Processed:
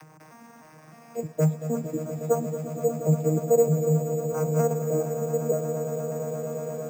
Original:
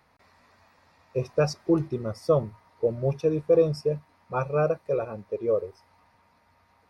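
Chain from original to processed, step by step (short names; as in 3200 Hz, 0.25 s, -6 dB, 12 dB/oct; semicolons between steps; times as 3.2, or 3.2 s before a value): arpeggiated vocoder bare fifth, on D#3, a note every 0.306 s; upward compressor, threshold -35 dBFS; on a send: swelling echo 0.117 s, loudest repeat 8, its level -13 dB; on the sum: Schroeder reverb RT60 1.8 s, combs from 25 ms, DRR 19.5 dB; careless resampling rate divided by 6×, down filtered, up hold; lo-fi delay 0.226 s, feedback 35%, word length 8-bit, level -14 dB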